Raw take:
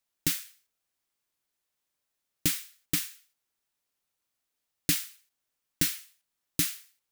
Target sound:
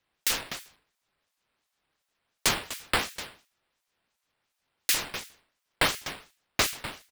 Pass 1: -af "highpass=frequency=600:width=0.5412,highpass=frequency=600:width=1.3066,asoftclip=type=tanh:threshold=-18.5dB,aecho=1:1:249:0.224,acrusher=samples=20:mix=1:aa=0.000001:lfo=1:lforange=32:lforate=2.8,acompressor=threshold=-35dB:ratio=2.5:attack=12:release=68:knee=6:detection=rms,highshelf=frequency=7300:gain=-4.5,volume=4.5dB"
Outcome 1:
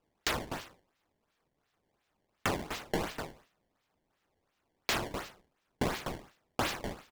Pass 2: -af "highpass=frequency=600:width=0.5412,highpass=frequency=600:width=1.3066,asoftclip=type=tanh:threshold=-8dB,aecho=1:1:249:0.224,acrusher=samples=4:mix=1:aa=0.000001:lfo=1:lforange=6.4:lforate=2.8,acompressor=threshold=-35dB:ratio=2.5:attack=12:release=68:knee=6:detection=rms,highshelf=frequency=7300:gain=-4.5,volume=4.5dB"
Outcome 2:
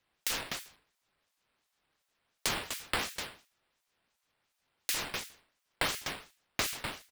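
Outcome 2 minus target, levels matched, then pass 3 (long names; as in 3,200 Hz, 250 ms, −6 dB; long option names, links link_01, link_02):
downward compressor: peak gain reduction +9 dB
-af "highpass=frequency=600:width=0.5412,highpass=frequency=600:width=1.3066,asoftclip=type=tanh:threshold=-8dB,aecho=1:1:249:0.224,acrusher=samples=4:mix=1:aa=0.000001:lfo=1:lforange=6.4:lforate=2.8,highshelf=frequency=7300:gain=-4.5,volume=4.5dB"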